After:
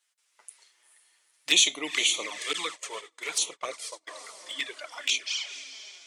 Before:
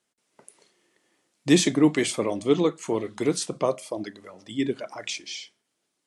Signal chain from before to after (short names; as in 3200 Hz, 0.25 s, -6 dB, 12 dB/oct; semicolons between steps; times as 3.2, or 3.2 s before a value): HPF 1400 Hz 12 dB/oct; diffused feedback echo 0.468 s, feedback 43%, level -11 dB; envelope flanger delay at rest 8.9 ms, full sweep at -29.5 dBFS; dynamic EQ 2700 Hz, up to +4 dB, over -48 dBFS, Q 1.6; 2.53–4.09 gate -43 dBFS, range -32 dB; gain +6.5 dB